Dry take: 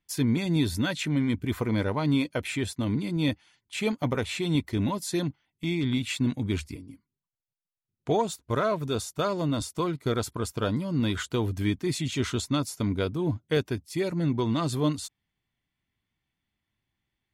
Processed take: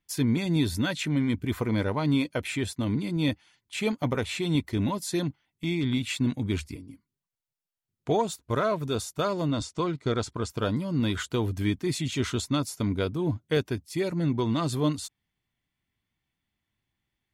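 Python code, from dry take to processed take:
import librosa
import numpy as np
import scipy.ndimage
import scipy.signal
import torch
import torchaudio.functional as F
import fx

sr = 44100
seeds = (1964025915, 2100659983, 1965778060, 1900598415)

y = fx.lowpass(x, sr, hz=7700.0, slope=24, at=(9.48, 10.5))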